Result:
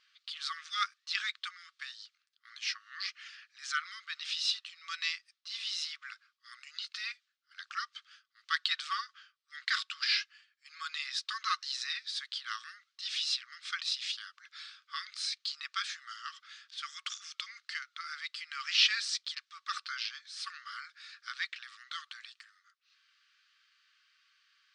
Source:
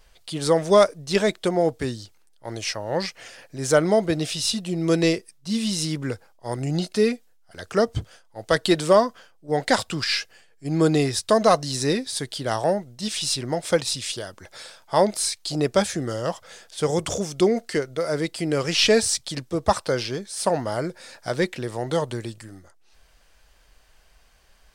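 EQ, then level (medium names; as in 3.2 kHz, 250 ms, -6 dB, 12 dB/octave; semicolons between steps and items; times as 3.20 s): brick-wall FIR high-pass 1.1 kHz; four-pole ladder low-pass 5.4 kHz, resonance 30%; 0.0 dB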